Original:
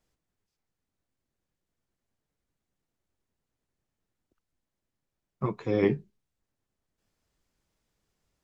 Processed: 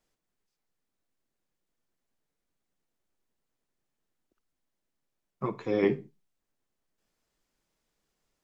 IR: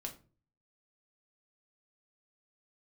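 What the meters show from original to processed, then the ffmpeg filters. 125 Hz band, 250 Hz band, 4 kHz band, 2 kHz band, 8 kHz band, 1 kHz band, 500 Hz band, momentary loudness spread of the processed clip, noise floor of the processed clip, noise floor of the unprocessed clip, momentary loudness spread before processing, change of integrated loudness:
-6.0 dB, -1.5 dB, 0.0 dB, 0.0 dB, n/a, 0.0 dB, -0.5 dB, 10 LU, -84 dBFS, under -85 dBFS, 9 LU, -1.0 dB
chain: -filter_complex "[0:a]equalizer=f=76:w=0.85:g=-12,asplit=2[a][b];[1:a]atrim=start_sample=2205,atrim=end_sample=6174,adelay=53[c];[b][c]afir=irnorm=-1:irlink=0,volume=-15dB[d];[a][d]amix=inputs=2:normalize=0"

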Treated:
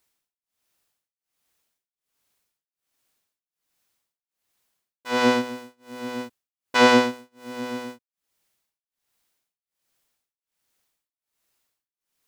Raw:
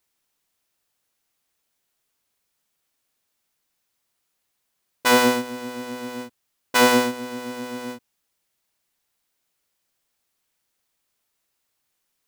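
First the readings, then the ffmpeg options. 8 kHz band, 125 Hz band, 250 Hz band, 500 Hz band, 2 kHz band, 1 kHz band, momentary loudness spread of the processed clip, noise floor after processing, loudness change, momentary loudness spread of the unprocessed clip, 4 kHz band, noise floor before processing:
-8.5 dB, 0.0 dB, 0.0 dB, -0.5 dB, -1.5 dB, -1.0 dB, 23 LU, under -85 dBFS, 0.0 dB, 17 LU, -2.0 dB, -76 dBFS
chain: -filter_complex "[0:a]tremolo=f=1.3:d=0.99,acrossover=split=6300[a][b];[b]acompressor=threshold=-51dB:ratio=4:attack=1:release=60[c];[a][c]amix=inputs=2:normalize=0,volume=2dB"

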